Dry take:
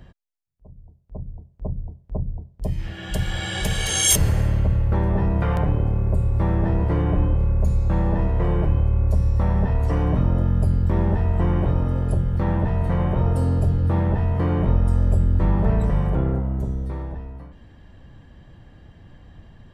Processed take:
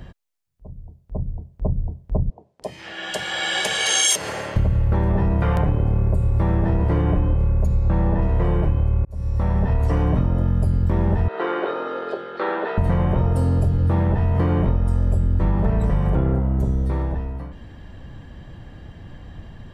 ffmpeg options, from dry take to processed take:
ffmpeg -i in.wav -filter_complex "[0:a]asettb=1/sr,asplit=3[link_01][link_02][link_03];[link_01]atrim=end=2.304[link_04];[link_02]atrim=start=2.3:end=4.56,asetpts=PTS-STARTPTS,afade=type=in:duration=0.004:curve=qsin,afade=type=out:start_time=2.256:duration=0.004:curve=qsin,highpass=500,lowpass=7700[link_05];[link_03]atrim=start=4.556[link_06];[link_04][link_05]acrossfade=duration=0.004:curve1=hsin:curve2=qsin[link_07];[link_07][link_06]acrossfade=duration=0.004:curve1=qsin:curve2=hsin,asplit=3[link_08][link_09][link_10];[link_08]afade=type=out:start_time=7.66:duration=0.02[link_11];[link_09]aemphasis=mode=reproduction:type=50fm,afade=type=in:start_time=7.66:duration=0.02,afade=type=out:start_time=8.21:duration=0.02[link_12];[link_10]afade=type=in:start_time=8.21:duration=0.02[link_13];[link_11][link_12][link_13]amix=inputs=3:normalize=0,asettb=1/sr,asplit=3[link_14][link_15][link_16];[link_14]atrim=end=11.284[link_17];[link_15]atrim=start=11.28:end=12.78,asetpts=PTS-STARTPTS,afade=type=in:duration=0.004:curve=qsin,afade=type=out:start_time=1.496:duration=0.004:curve=qsin,highpass=frequency=400:width=0.5412,highpass=frequency=400:width=1.3066,equalizer=frequency=400:width_type=q:width=4:gain=5,equalizer=frequency=620:width_type=q:width=4:gain=-4,equalizer=frequency=910:width_type=q:width=4:gain=-4,equalizer=frequency=1400:width_type=q:width=4:gain=8,equalizer=frequency=3900:width_type=q:width=4:gain=7,lowpass=frequency=4500:width=0.5412,lowpass=frequency=4500:width=1.3066[link_18];[link_16]atrim=start=12.776[link_19];[link_17][link_18]acrossfade=duration=0.004:curve1=hsin:curve2=qsin[link_20];[link_20][link_19]acrossfade=duration=0.004:curve1=qsin:curve2=hsin,asplit=2[link_21][link_22];[link_21]atrim=end=9.05,asetpts=PTS-STARTPTS,afade=type=out:start_time=9.046:duration=0.004:curve=hsin[link_23];[link_22]atrim=start=9.05,asetpts=PTS-STARTPTS,afade=type=in:duration=1.23:curve=qsin[link_24];[link_23][link_24]concat=n=2:v=0:a=1,acompressor=threshold=-22dB:ratio=6,volume=7dB" out.wav

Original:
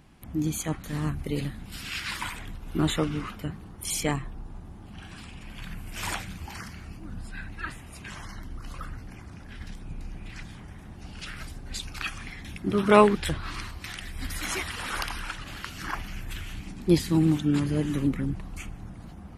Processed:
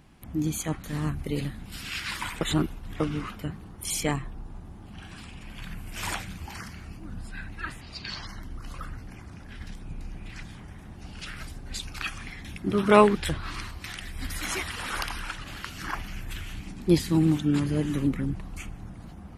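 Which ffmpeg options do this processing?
ffmpeg -i in.wav -filter_complex "[0:a]asettb=1/sr,asplit=3[link_01][link_02][link_03];[link_01]atrim=end=7.814[link_04];[link_02]atrim=start=7.81:end=8.27,asetpts=PTS-STARTPTS,afade=type=in:duration=0.004:curve=qsin,afade=type=out:start_time=0.456:duration=0.004:curve=qsin,lowpass=frequency=4500:width_type=q:width=14[link_05];[link_03]atrim=start=8.266[link_06];[link_04][link_05]acrossfade=duration=0.004:curve1=hsin:curve2=qsin[link_07];[link_07][link_06]acrossfade=duration=0.004:curve1=qsin:curve2=hsin,asplit=3[link_08][link_09][link_10];[link_08]atrim=end=2.412[link_11];[link_09]atrim=start=2.408:end=3.002,asetpts=PTS-STARTPTS,areverse[link_12];[link_10]atrim=start=2.998[link_13];[link_11][link_12]acrossfade=duration=0.004:curve1=hsin:curve2=hsin[link_14];[link_14][link_13]acrossfade=duration=0.004:curve1=hsin:curve2=hsin" out.wav

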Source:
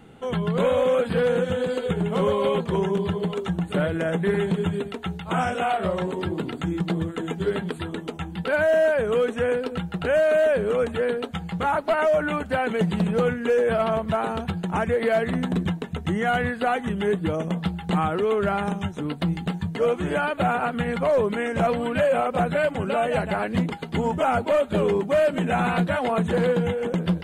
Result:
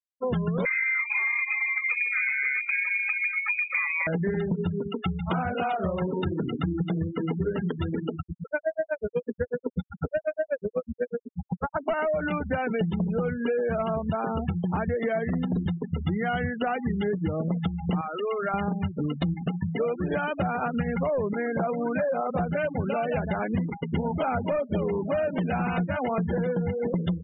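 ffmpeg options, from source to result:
ffmpeg -i in.wav -filter_complex "[0:a]asettb=1/sr,asplit=3[link_01][link_02][link_03];[link_01]atrim=end=0.654[link_04];[link_02]atrim=start=0.65:end=4.07,asetpts=PTS-STARTPTS,afade=type=in:duration=0.004:curve=qsin,afade=type=out:start_time=3.416:duration=0.004:curve=qsin,lowpass=frequency=2200:width_type=q:width=0.5098,lowpass=frequency=2200:width_type=q:width=0.6013,lowpass=frequency=2200:width_type=q:width=0.9,lowpass=frequency=2200:width_type=q:width=2.563,afreqshift=-2600[link_05];[link_03]atrim=start=4.066[link_06];[link_04][link_05]acrossfade=duration=0.004:curve1=hsin:curve2=qsin[link_07];[link_07][link_06]acrossfade=duration=0.004:curve1=qsin:curve2=hsin,asettb=1/sr,asplit=3[link_08][link_09][link_10];[link_08]atrim=end=8.194[link_11];[link_09]atrim=start=8.19:end=11.8,asetpts=PTS-STARTPTS,afade=type=in:duration=0.004:curve=qsin,afade=type=out:start_time=3.606:duration=0.004:curve=qsin,aeval=exprs='val(0)*pow(10,-38*(0.5-0.5*cos(2*PI*8.1*n/s))/20)':channel_layout=same[link_12];[link_10]atrim=start=11.796[link_13];[link_11][link_12]acrossfade=duration=0.004:curve1=hsin:curve2=qsin[link_14];[link_14][link_13]acrossfade=duration=0.004:curve1=qsin:curve2=hsin,asettb=1/sr,asplit=3[link_15][link_16][link_17];[link_15]atrim=end=18.014[link_18];[link_16]atrim=start=18.01:end=18.54,asetpts=PTS-STARTPTS,afade=type=in:duration=0.004:curve=qsin,afade=type=out:start_time=0.526:duration=0.004:curve=qsin,highpass=frequency=1100:poles=1[link_19];[link_17]atrim=start=18.536[link_20];[link_18][link_19]acrossfade=duration=0.004:curve1=hsin:curve2=qsin[link_21];[link_21][link_20]acrossfade=duration=0.004:curve1=qsin:curve2=hsin,asettb=1/sr,asplit=3[link_22][link_23][link_24];[link_22]atrim=end=19.344[link_25];[link_23]atrim=start=19.34:end=20.13,asetpts=PTS-STARTPTS,afade=type=in:duration=0.004:curve=qsin,afade=type=out:start_time=0.786:duration=0.004:curve=qsin,lowshelf=frequency=100:gain=-11.5[link_26];[link_24]atrim=start=20.126[link_27];[link_25][link_26]acrossfade=duration=0.004:curve1=hsin:curve2=qsin[link_28];[link_28][link_27]acrossfade=duration=0.004:curve1=qsin:curve2=hsin,asettb=1/sr,asplit=3[link_29][link_30][link_31];[link_29]atrim=end=21.334[link_32];[link_30]atrim=start=21.33:end=22.3,asetpts=PTS-STARTPTS,afade=type=in:duration=0.004:curve=qsin,afade=type=out:start_time=0.966:duration=0.004:curve=qsin,highpass=200,lowpass=2100[link_33];[link_31]atrim=start=22.296[link_34];[link_32][link_33]acrossfade=duration=0.004:curve1=hsin:curve2=qsin[link_35];[link_35][link_34]acrossfade=duration=0.004:curve1=qsin:curve2=hsin,asettb=1/sr,asplit=3[link_36][link_37][link_38];[link_36]atrim=end=23.104[link_39];[link_37]atrim=start=23.1:end=25.4,asetpts=PTS-STARTPTS,afade=type=in:duration=0.004:curve=qsin,afade=type=out:start_time=2.296:duration=0.004:curve=qsin,aecho=1:1:870:0.237,atrim=end_sample=101430[link_40];[link_38]atrim=start=25.396[link_41];[link_39][link_40]acrossfade=duration=0.004:curve1=hsin:curve2=qsin[link_42];[link_42][link_41]acrossfade=duration=0.004:curve1=qsin:curve2=hsin,afftfilt=real='re*gte(hypot(re,im),0.0501)':imag='im*gte(hypot(re,im),0.0501)':win_size=1024:overlap=0.75,bass=frequency=250:gain=5,treble=frequency=4000:gain=9,acompressor=threshold=-28dB:ratio=6,volume=3.5dB" out.wav

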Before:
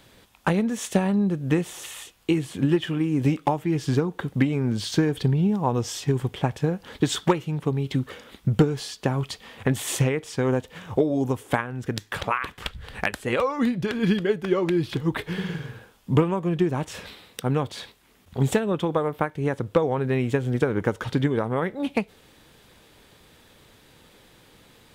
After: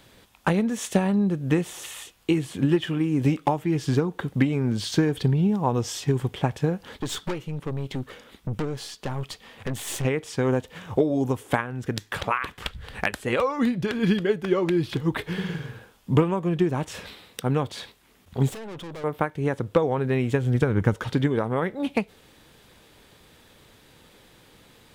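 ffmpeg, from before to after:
ffmpeg -i in.wav -filter_complex "[0:a]asettb=1/sr,asplit=3[link_01][link_02][link_03];[link_01]atrim=end=6.954[link_04];[link_02]atrim=start=6.95:end=10.05,asetpts=PTS-STARTPTS,afade=type=in:duration=0.004:curve=qsin,afade=type=out:start_time=3.096:duration=0.004:curve=qsin,aeval=exprs='(tanh(17.8*val(0)+0.6)-tanh(0.6))/17.8':channel_layout=same[link_05];[link_03]atrim=start=10.046[link_06];[link_04][link_05]acrossfade=duration=0.004:curve1=hsin:curve2=qsin[link_07];[link_07][link_06]acrossfade=duration=0.004:curve1=qsin:curve2=hsin,asettb=1/sr,asplit=3[link_08][link_09][link_10];[link_08]atrim=end=18.494[link_11];[link_09]atrim=start=18.49:end=19.04,asetpts=PTS-STARTPTS,afade=type=in:duration=0.004:curve=qsin,afade=type=out:start_time=0.546:duration=0.004:curve=qsin,aeval=exprs='(tanh(63.1*val(0)+0.3)-tanh(0.3))/63.1':channel_layout=same[link_12];[link_10]atrim=start=19.036[link_13];[link_11][link_12]acrossfade=duration=0.004:curve1=hsin:curve2=qsin[link_14];[link_14][link_13]acrossfade=duration=0.004:curve1=qsin:curve2=hsin,asettb=1/sr,asplit=3[link_15][link_16][link_17];[link_15]atrim=end=20.244[link_18];[link_16]atrim=start=20.24:end=20.94,asetpts=PTS-STARTPTS,afade=type=in:duration=0.004:curve=qsin,afade=type=out:start_time=0.696:duration=0.004:curve=qsin,asubboost=boost=12:cutoff=200[link_19];[link_17]atrim=start=20.936[link_20];[link_18][link_19]acrossfade=duration=0.004:curve1=hsin:curve2=qsin[link_21];[link_21][link_20]acrossfade=duration=0.004:curve1=qsin:curve2=hsin" out.wav

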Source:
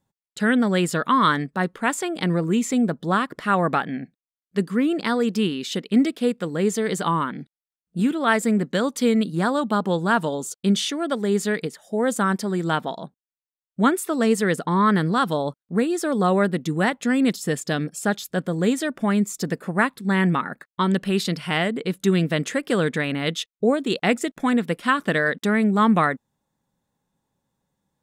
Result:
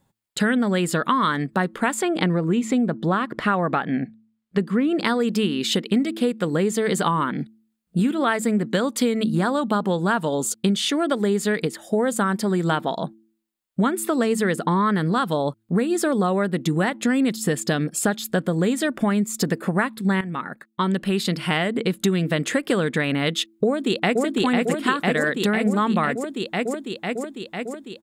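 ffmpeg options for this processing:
ffmpeg -i in.wav -filter_complex "[0:a]asettb=1/sr,asplit=3[link_01][link_02][link_03];[link_01]atrim=end=2.024[link_04];[link_02]atrim=start=2.02:end=4.98,asetpts=PTS-STARTPTS,afade=type=in:duration=0.004:curve=qsin,afade=type=out:start_time=2.956:duration=0.004:curve=qsin,lowpass=frequency=3300:poles=1[link_05];[link_03]atrim=start=4.976[link_06];[link_04][link_05]acrossfade=duration=0.004:curve1=hsin:curve2=qsin[link_07];[link_07][link_06]acrossfade=duration=0.004:curve1=qsin:curve2=hsin,asplit=2[link_08][link_09];[link_09]afade=type=in:start_time=23.65:duration=0.01,afade=type=out:start_time=24.24:duration=0.01,aecho=0:1:500|1000|1500|2000|2500|3000|3500|4000|4500|5000|5500|6000:0.944061|0.660843|0.46259|0.323813|0.226669|0.158668|0.111068|0.0777475|0.0544232|0.0380963|0.0266674|0.0186672[link_10];[link_08][link_10]amix=inputs=2:normalize=0,asplit=2[link_11][link_12];[link_11]atrim=end=20.21,asetpts=PTS-STARTPTS,afade=type=out:start_time=20.206:duration=0.004:curve=hsin:silence=0.177828[link_13];[link_12]atrim=start=20.21,asetpts=PTS-STARTPTS,afade=type=in:duration=2.12:silence=0.177828[link_14];[link_13][link_14]concat=n=2:v=0:a=1,equalizer=frequency=5800:width_type=o:width=0.27:gain=-5.5,bandreject=frequency=110.4:width_type=h:width=4,bandreject=frequency=220.8:width_type=h:width=4,bandreject=frequency=331.2:width_type=h:width=4,acompressor=threshold=-27dB:ratio=6,volume=9dB" out.wav

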